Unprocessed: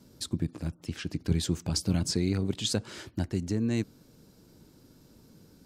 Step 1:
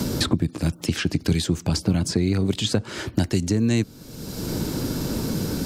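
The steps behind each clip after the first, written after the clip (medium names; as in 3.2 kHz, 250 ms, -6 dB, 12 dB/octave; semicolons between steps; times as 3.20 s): three bands compressed up and down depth 100%; trim +7.5 dB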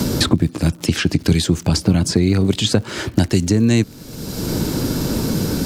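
crackle 110 per s -38 dBFS; trim +6 dB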